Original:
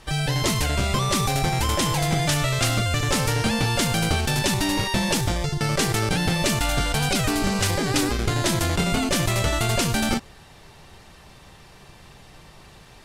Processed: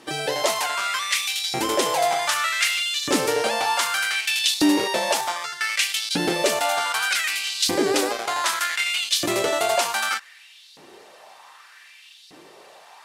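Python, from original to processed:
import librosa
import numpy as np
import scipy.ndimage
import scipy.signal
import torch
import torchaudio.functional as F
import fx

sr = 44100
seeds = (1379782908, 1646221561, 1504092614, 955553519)

y = fx.filter_lfo_highpass(x, sr, shape='saw_up', hz=0.65, low_hz=270.0, high_hz=4300.0, q=3.0)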